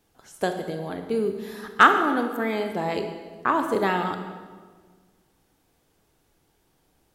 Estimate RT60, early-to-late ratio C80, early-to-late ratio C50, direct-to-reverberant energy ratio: 1.6 s, 8.5 dB, 7.0 dB, 6.0 dB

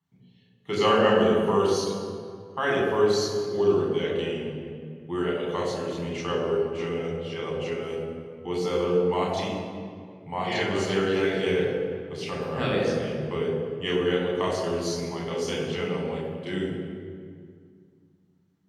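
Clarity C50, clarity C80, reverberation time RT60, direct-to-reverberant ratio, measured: 1.0 dB, 2.5 dB, 2.1 s, -4.0 dB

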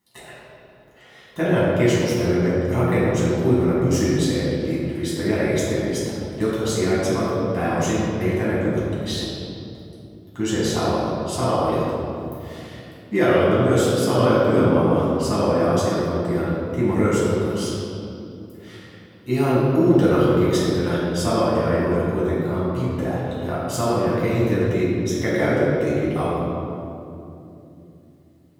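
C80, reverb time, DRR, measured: -1.0 dB, 2.9 s, -9.5 dB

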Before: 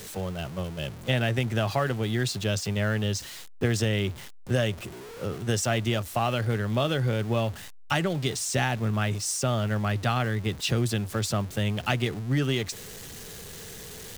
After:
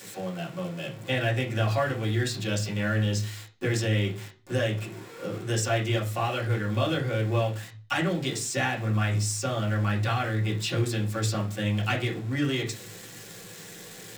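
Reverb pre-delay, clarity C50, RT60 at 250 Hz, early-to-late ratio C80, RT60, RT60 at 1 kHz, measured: 3 ms, 12.0 dB, 0.50 s, 18.0 dB, 0.40 s, 0.35 s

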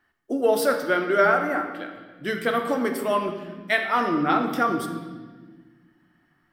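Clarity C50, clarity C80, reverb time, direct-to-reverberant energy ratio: 6.5 dB, 8.0 dB, 1.5 s, 4.5 dB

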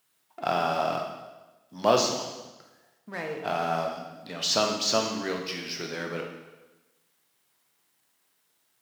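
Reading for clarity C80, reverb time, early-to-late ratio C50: 7.0 dB, 1.1 s, 4.5 dB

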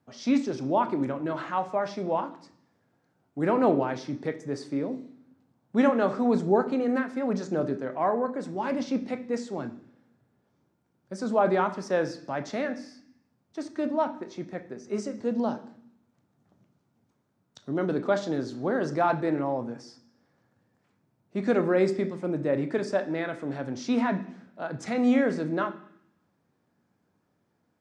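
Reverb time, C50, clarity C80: 0.65 s, 13.5 dB, 16.5 dB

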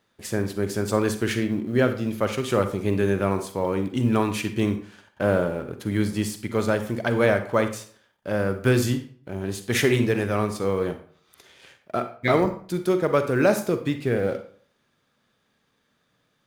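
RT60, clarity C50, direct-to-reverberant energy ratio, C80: 0.50 s, 11.0 dB, 8.5 dB, 14.5 dB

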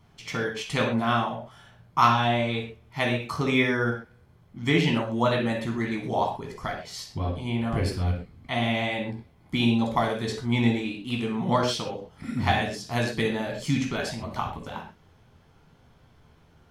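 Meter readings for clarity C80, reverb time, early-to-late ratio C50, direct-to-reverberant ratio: 9.5 dB, no single decay rate, 5.0 dB, -0.5 dB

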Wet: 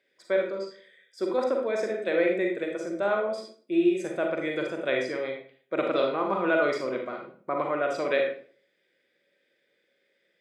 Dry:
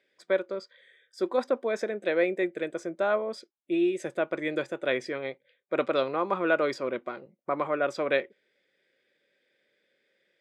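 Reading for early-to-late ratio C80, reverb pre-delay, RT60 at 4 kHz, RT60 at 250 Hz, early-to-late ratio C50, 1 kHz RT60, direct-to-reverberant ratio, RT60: 9.0 dB, 36 ms, 0.35 s, 0.50 s, 4.0 dB, 0.45 s, 1.5 dB, 0.45 s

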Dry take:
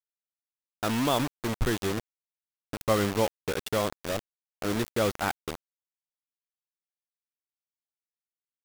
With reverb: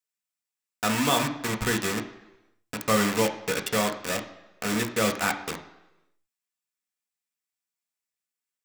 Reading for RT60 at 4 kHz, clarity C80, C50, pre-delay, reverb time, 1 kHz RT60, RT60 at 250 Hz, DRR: 0.90 s, 14.5 dB, 11.5 dB, 3 ms, 1.0 s, 1.0 s, 0.85 s, 4.0 dB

